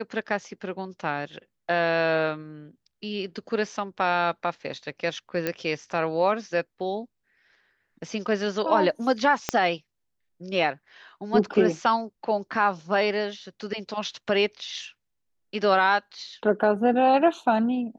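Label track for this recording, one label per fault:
5.470000	5.470000	pop -12 dBFS
9.490000	9.490000	pop -8 dBFS

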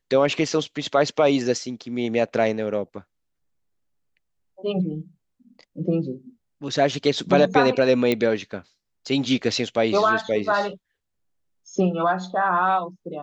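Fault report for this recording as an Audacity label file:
8.120000	8.120000	pop -9 dBFS

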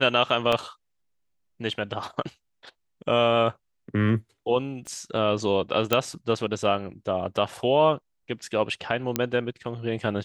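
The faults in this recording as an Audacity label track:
0.520000	0.520000	dropout 4.6 ms
4.870000	4.870000	pop -25 dBFS
5.930000	5.930000	pop -6 dBFS
9.160000	9.160000	pop -7 dBFS

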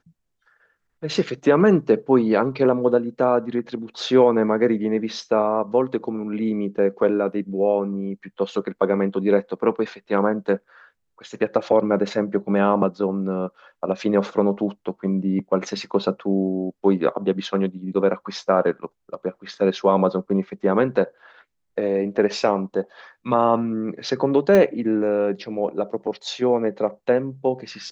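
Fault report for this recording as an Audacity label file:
24.550000	24.550000	pop -8 dBFS

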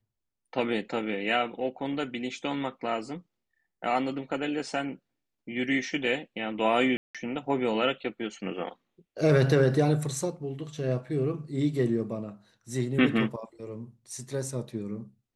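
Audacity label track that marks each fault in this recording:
6.970000	7.150000	dropout 176 ms

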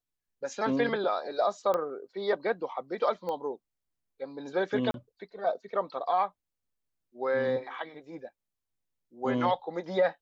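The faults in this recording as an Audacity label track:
1.740000	1.740000	pop -18 dBFS
3.290000	3.290000	pop -24 dBFS
4.910000	4.940000	dropout 32 ms

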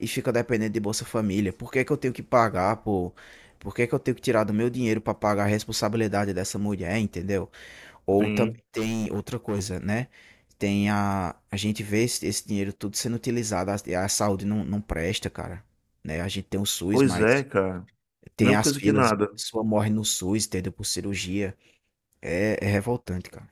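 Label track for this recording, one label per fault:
8.770000	9.780000	clipped -23.5 dBFS

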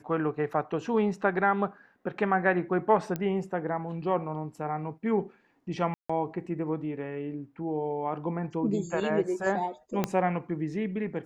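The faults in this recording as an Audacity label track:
3.160000	3.160000	pop -18 dBFS
5.940000	6.090000	dropout 155 ms
10.040000	10.040000	pop -12 dBFS

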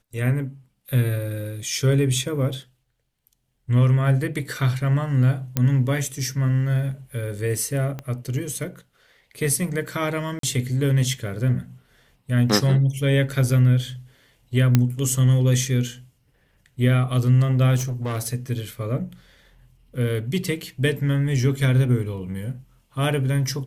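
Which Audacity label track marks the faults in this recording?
5.570000	5.570000	pop -7 dBFS
7.990000	7.990000	pop -18 dBFS
10.390000	10.430000	dropout 43 ms
14.750000	14.750000	pop -4 dBFS
17.760000	18.340000	clipped -23 dBFS

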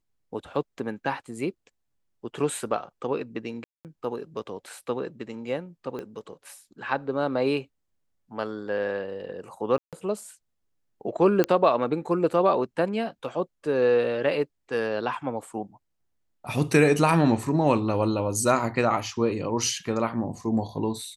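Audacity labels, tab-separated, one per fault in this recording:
3.640000	3.850000	dropout 208 ms
5.990000	5.990000	pop -24 dBFS
9.780000	9.930000	dropout 147 ms
11.440000	11.440000	pop -9 dBFS

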